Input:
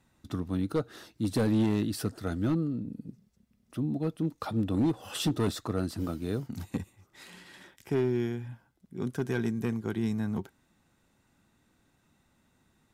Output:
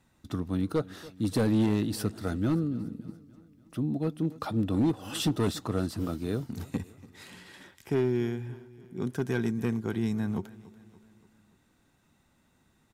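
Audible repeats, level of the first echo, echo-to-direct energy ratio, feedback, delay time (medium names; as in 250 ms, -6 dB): 3, -19.5 dB, -18.0 dB, 54%, 287 ms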